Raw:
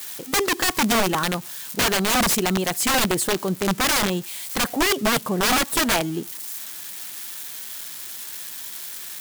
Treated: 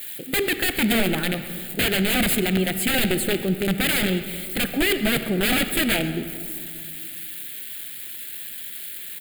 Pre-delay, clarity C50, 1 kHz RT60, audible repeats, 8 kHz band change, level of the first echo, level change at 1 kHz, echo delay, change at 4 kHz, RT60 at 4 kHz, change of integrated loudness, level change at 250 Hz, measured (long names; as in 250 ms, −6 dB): 37 ms, 9.5 dB, 2.2 s, 1, −5.5 dB, −18.5 dB, −9.0 dB, 133 ms, −1.0 dB, 1.5 s, −0.5 dB, +1.5 dB